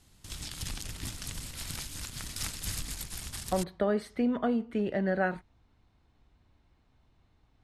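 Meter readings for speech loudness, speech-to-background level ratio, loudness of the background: -31.0 LUFS, 7.5 dB, -38.5 LUFS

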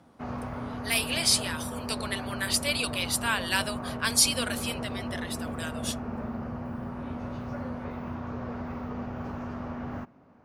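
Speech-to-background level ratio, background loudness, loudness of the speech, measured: 8.0 dB, -36.0 LUFS, -28.0 LUFS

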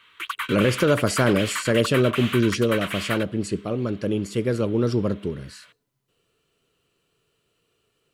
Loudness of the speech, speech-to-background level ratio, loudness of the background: -23.0 LUFS, 7.0 dB, -30.0 LUFS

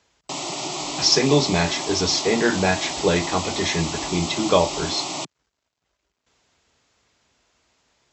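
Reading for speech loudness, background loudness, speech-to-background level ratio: -21.5 LUFS, -28.0 LUFS, 6.5 dB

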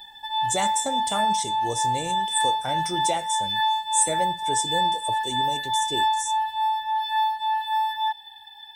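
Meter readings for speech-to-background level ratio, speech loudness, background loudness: -4.5 dB, -29.0 LUFS, -24.5 LUFS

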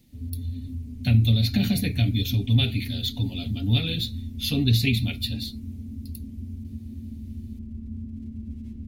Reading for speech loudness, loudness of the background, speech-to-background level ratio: -24.5 LUFS, -36.0 LUFS, 11.5 dB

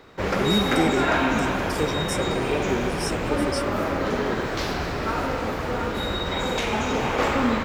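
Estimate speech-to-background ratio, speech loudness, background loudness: -5.0 dB, -29.5 LUFS, -24.5 LUFS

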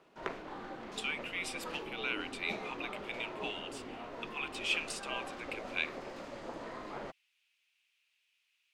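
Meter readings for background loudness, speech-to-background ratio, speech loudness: -44.0 LUFS, 5.5 dB, -38.5 LUFS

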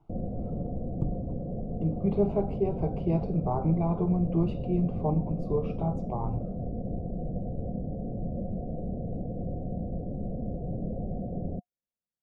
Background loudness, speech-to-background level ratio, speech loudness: -35.5 LUFS, 5.5 dB, -30.0 LUFS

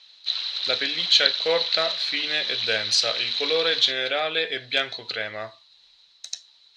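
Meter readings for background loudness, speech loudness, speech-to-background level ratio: -25.5 LUFS, -23.5 LUFS, 2.0 dB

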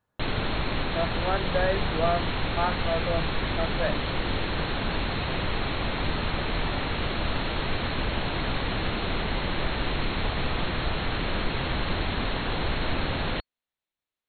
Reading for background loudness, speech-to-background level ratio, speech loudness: -29.0 LUFS, -1.5 dB, -30.5 LUFS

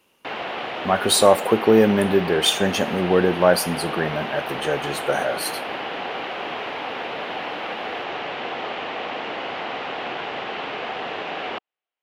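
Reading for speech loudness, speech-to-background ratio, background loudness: -20.0 LUFS, 9.0 dB, -29.0 LUFS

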